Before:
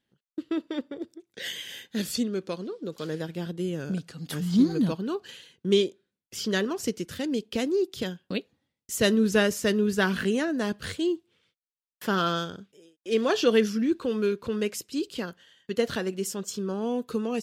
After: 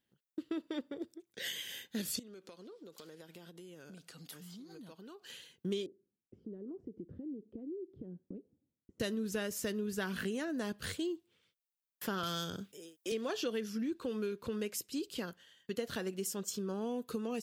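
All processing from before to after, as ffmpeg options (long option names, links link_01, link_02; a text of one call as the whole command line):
ffmpeg -i in.wav -filter_complex "[0:a]asettb=1/sr,asplit=3[link_01][link_02][link_03];[link_01]atrim=end=2.194[link_04];[link_02]atrim=start=2.19:end=5.3,asetpts=PTS-STARTPTS,afade=type=in:duration=0.004:curve=qsin,afade=type=out:start_time=3.106:duration=0.004:curve=qsin,highpass=frequency=440:poles=1,acompressor=threshold=-42dB:ratio=16:attack=3.2:release=140:knee=1:detection=peak,bandreject=frequency=1700:width=24[link_05];[link_03]atrim=start=5.296[link_06];[link_04][link_05]acrossfade=duration=0.004:curve1=hsin:curve2=qsin[link_07];[link_07][link_06]acrossfade=duration=0.004:curve1=qsin:curve2=hsin,asettb=1/sr,asplit=3[link_08][link_09][link_10];[link_08]atrim=end=5.864[link_11];[link_09]atrim=start=5.86:end=9,asetpts=PTS-STARTPTS,afade=type=in:duration=0.004:curve=qsin,afade=type=out:start_time=3.136:duration=0.004:curve=qsin,acompressor=threshold=-37dB:ratio=20:attack=3.2:release=140:knee=1:detection=peak,lowpass=frequency=350:width_type=q:width=1.6[link_12];[link_10]atrim=start=8.996[link_13];[link_11][link_12]acrossfade=duration=0.004:curve1=hsin:curve2=qsin[link_14];[link_14][link_13]acrossfade=duration=0.004:curve1=qsin:curve2=hsin,asettb=1/sr,asplit=3[link_15][link_16][link_17];[link_15]atrim=end=12.234[link_18];[link_16]atrim=start=12.23:end=13.12,asetpts=PTS-STARTPTS,afade=type=in:duration=0.004:curve=qsin,afade=type=out:start_time=0.886:duration=0.004:curve=qsin,highshelf=frequency=6000:gain=5.5,acrossover=split=140|3000[link_19][link_20][link_21];[link_20]acompressor=threshold=-44dB:ratio=1.5:attack=3.2:release=140:knee=2.83:detection=peak[link_22];[link_19][link_22][link_21]amix=inputs=3:normalize=0,aeval=exprs='0.141*sin(PI/2*1.58*val(0)/0.141)':channel_layout=same[link_23];[link_17]atrim=start=13.116[link_24];[link_18][link_23]acrossfade=duration=0.004:curve1=hsin:curve2=qsin[link_25];[link_25][link_24]acrossfade=duration=0.004:curve1=qsin:curve2=hsin,highshelf=frequency=11000:gain=11.5,acompressor=threshold=-28dB:ratio=6,volume=-5.5dB" out.wav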